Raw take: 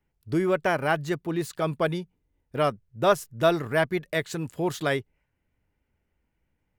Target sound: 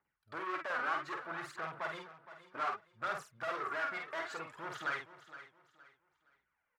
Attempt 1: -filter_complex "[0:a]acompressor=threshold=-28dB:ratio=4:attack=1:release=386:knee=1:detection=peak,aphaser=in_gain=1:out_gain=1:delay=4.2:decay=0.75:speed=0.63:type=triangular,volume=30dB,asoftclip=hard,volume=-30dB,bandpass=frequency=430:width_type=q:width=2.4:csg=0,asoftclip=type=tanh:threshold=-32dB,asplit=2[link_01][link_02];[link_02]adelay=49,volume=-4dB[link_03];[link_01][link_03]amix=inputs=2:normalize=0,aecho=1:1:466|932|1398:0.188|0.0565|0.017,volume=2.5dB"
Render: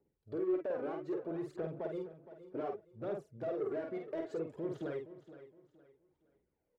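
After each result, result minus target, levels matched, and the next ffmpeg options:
downward compressor: peak gain reduction +13.5 dB; 1,000 Hz band −10.5 dB; soft clipping: distortion +10 dB
-filter_complex "[0:a]aphaser=in_gain=1:out_gain=1:delay=4.2:decay=0.75:speed=0.63:type=triangular,volume=30dB,asoftclip=hard,volume=-30dB,bandpass=frequency=430:width_type=q:width=2.4:csg=0,asoftclip=type=tanh:threshold=-32dB,asplit=2[link_01][link_02];[link_02]adelay=49,volume=-4dB[link_03];[link_01][link_03]amix=inputs=2:normalize=0,aecho=1:1:466|932|1398:0.188|0.0565|0.017,volume=2.5dB"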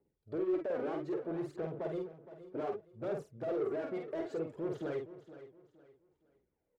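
1,000 Hz band −10.5 dB; soft clipping: distortion +11 dB
-filter_complex "[0:a]aphaser=in_gain=1:out_gain=1:delay=4.2:decay=0.75:speed=0.63:type=triangular,volume=30dB,asoftclip=hard,volume=-30dB,bandpass=frequency=1300:width_type=q:width=2.4:csg=0,asoftclip=type=tanh:threshold=-32dB,asplit=2[link_01][link_02];[link_02]adelay=49,volume=-4dB[link_03];[link_01][link_03]amix=inputs=2:normalize=0,aecho=1:1:466|932|1398:0.188|0.0565|0.017,volume=2.5dB"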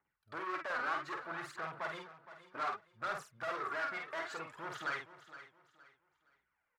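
soft clipping: distortion +10 dB
-filter_complex "[0:a]aphaser=in_gain=1:out_gain=1:delay=4.2:decay=0.75:speed=0.63:type=triangular,volume=30dB,asoftclip=hard,volume=-30dB,bandpass=frequency=1300:width_type=q:width=2.4:csg=0,asoftclip=type=tanh:threshold=-26dB,asplit=2[link_01][link_02];[link_02]adelay=49,volume=-4dB[link_03];[link_01][link_03]amix=inputs=2:normalize=0,aecho=1:1:466|932|1398:0.188|0.0565|0.017,volume=2.5dB"

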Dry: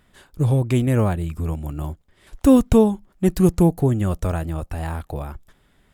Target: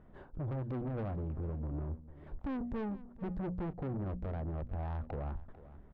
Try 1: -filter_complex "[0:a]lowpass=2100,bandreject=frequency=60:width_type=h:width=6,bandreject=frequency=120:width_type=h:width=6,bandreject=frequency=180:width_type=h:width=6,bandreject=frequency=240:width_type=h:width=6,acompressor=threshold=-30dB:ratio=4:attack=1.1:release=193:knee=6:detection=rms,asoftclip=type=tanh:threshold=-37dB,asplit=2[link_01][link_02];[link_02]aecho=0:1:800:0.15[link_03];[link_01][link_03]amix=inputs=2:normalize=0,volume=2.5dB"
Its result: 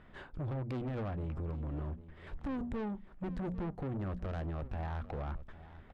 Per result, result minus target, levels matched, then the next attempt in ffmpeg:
echo 354 ms late; 2,000 Hz band +4.5 dB
-filter_complex "[0:a]lowpass=2100,bandreject=frequency=60:width_type=h:width=6,bandreject=frequency=120:width_type=h:width=6,bandreject=frequency=180:width_type=h:width=6,bandreject=frequency=240:width_type=h:width=6,acompressor=threshold=-30dB:ratio=4:attack=1.1:release=193:knee=6:detection=rms,asoftclip=type=tanh:threshold=-37dB,asplit=2[link_01][link_02];[link_02]aecho=0:1:446:0.15[link_03];[link_01][link_03]amix=inputs=2:normalize=0,volume=2.5dB"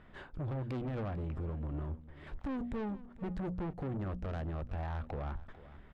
2,000 Hz band +4.5 dB
-filter_complex "[0:a]lowpass=820,bandreject=frequency=60:width_type=h:width=6,bandreject=frequency=120:width_type=h:width=6,bandreject=frequency=180:width_type=h:width=6,bandreject=frequency=240:width_type=h:width=6,acompressor=threshold=-30dB:ratio=4:attack=1.1:release=193:knee=6:detection=rms,asoftclip=type=tanh:threshold=-37dB,asplit=2[link_01][link_02];[link_02]aecho=0:1:446:0.15[link_03];[link_01][link_03]amix=inputs=2:normalize=0,volume=2.5dB"

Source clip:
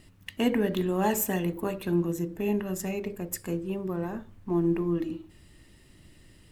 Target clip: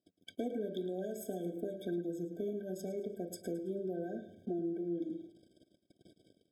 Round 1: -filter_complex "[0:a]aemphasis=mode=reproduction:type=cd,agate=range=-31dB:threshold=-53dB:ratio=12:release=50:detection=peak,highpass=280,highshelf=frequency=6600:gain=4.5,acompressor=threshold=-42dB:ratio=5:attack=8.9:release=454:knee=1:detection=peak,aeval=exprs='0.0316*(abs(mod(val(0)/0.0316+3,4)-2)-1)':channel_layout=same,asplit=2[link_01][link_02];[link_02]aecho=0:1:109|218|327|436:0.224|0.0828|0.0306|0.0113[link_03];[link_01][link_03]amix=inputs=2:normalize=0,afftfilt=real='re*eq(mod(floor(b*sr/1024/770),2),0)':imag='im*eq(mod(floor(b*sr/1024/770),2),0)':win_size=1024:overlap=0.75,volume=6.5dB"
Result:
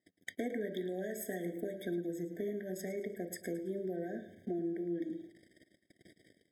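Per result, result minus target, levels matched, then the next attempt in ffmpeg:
2,000 Hz band +10.5 dB; 8,000 Hz band +4.0 dB
-filter_complex "[0:a]aemphasis=mode=reproduction:type=cd,agate=range=-31dB:threshold=-53dB:ratio=12:release=50:detection=peak,highpass=280,highshelf=frequency=6600:gain=4.5,acompressor=threshold=-42dB:ratio=5:attack=8.9:release=454:knee=1:detection=peak,asuperstop=centerf=1900:order=20:qfactor=2.8,aeval=exprs='0.0316*(abs(mod(val(0)/0.0316+3,4)-2)-1)':channel_layout=same,asplit=2[link_01][link_02];[link_02]aecho=0:1:109|218|327|436:0.224|0.0828|0.0306|0.0113[link_03];[link_01][link_03]amix=inputs=2:normalize=0,afftfilt=real='re*eq(mod(floor(b*sr/1024/770),2),0)':imag='im*eq(mod(floor(b*sr/1024/770),2),0)':win_size=1024:overlap=0.75,volume=6.5dB"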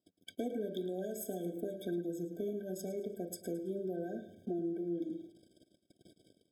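8,000 Hz band +4.0 dB
-filter_complex "[0:a]aemphasis=mode=reproduction:type=cd,agate=range=-31dB:threshold=-53dB:ratio=12:release=50:detection=peak,highpass=280,highshelf=frequency=6600:gain=-3.5,acompressor=threshold=-42dB:ratio=5:attack=8.9:release=454:knee=1:detection=peak,asuperstop=centerf=1900:order=20:qfactor=2.8,aeval=exprs='0.0316*(abs(mod(val(0)/0.0316+3,4)-2)-1)':channel_layout=same,asplit=2[link_01][link_02];[link_02]aecho=0:1:109|218|327|436:0.224|0.0828|0.0306|0.0113[link_03];[link_01][link_03]amix=inputs=2:normalize=0,afftfilt=real='re*eq(mod(floor(b*sr/1024/770),2),0)':imag='im*eq(mod(floor(b*sr/1024/770),2),0)':win_size=1024:overlap=0.75,volume=6.5dB"

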